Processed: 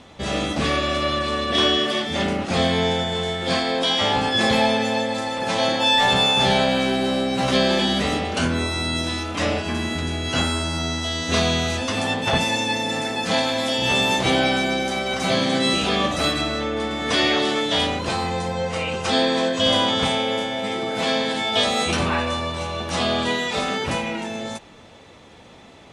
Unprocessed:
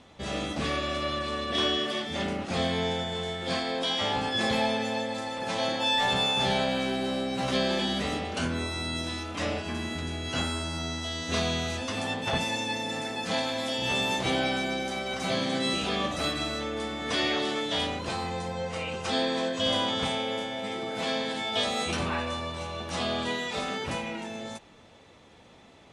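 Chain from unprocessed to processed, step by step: 16.41–16.91 high shelf 6100 Hz -9 dB; gain +8 dB

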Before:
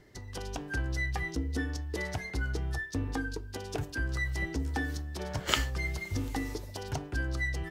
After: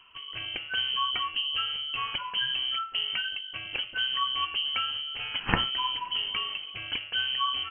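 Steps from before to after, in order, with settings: inverted band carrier 3100 Hz; high shelf 2300 Hz -9 dB; gain +6.5 dB

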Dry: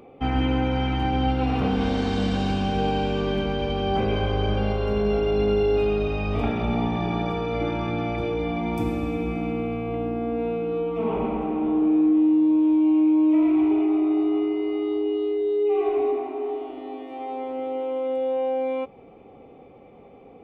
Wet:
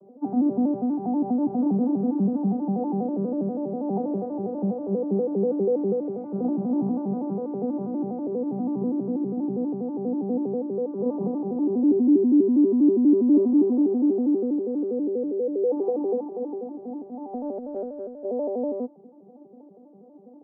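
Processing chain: arpeggiated vocoder major triad, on G3, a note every 81 ms; inverse Chebyshev low-pass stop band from 4600 Hz, stop band 80 dB; 17.33–18.25 negative-ratio compressor -32 dBFS, ratio -0.5

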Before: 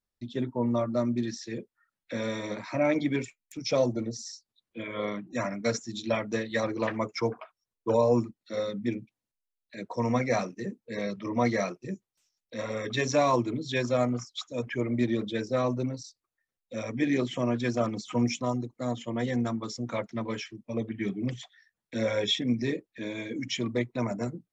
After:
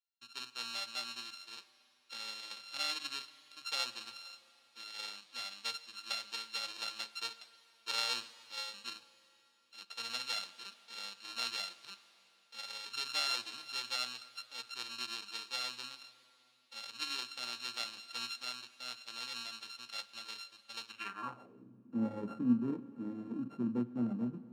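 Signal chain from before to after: sample sorter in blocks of 32 samples; Schroeder reverb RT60 3.5 s, combs from 32 ms, DRR 14.5 dB; band-pass sweep 4000 Hz -> 230 Hz, 20.88–21.7

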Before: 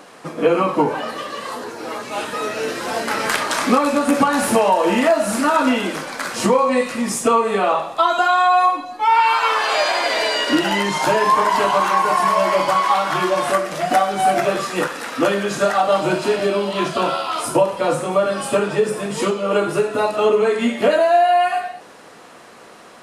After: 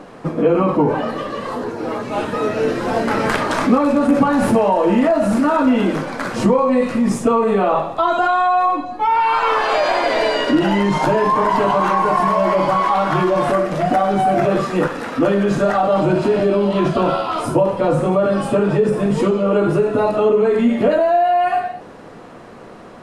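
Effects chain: tilt -3.5 dB/oct; in parallel at -2 dB: negative-ratio compressor -18 dBFS; on the sum: gain -4.5 dB

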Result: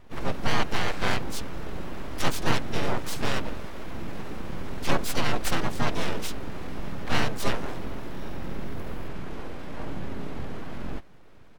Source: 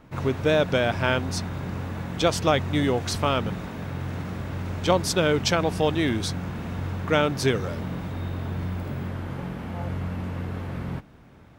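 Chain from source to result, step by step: full-wave rectifier; harmoniser -7 st -3 dB, -4 st -1 dB, +7 st -2 dB; gain -6 dB

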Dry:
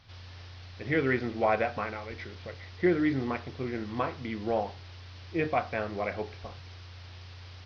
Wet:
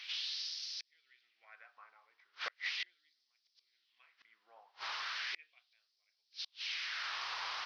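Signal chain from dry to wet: flipped gate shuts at -32 dBFS, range -39 dB; LFO high-pass sine 0.37 Hz 1000–5200 Hz; gain +10.5 dB

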